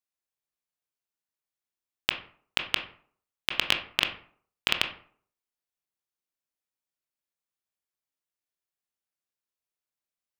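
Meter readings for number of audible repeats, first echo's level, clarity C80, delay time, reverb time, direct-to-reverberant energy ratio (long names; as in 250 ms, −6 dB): no echo audible, no echo audible, 14.5 dB, no echo audible, 0.50 s, 4.5 dB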